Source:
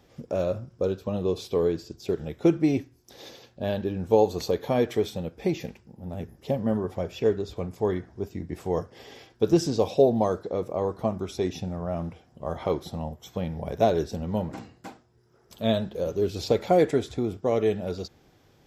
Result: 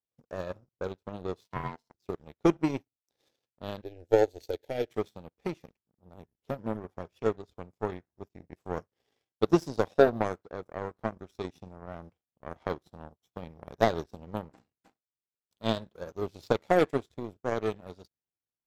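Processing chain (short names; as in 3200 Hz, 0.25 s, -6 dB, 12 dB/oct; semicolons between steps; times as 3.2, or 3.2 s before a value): 1.44–1.94 ring modulator 570 Hz; power-law curve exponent 2; 3.82–4.91 fixed phaser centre 460 Hz, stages 4; gain +3.5 dB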